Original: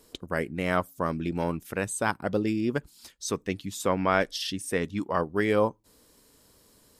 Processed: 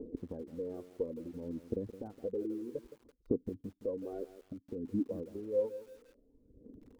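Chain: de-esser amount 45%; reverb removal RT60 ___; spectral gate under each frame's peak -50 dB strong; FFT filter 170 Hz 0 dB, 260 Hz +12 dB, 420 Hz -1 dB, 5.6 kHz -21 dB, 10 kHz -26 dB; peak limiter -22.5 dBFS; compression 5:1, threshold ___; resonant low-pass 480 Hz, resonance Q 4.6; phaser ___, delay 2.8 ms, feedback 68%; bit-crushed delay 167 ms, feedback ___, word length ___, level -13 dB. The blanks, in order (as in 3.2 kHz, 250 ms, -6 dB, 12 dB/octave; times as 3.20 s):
1.5 s, -44 dBFS, 0.6 Hz, 35%, 9-bit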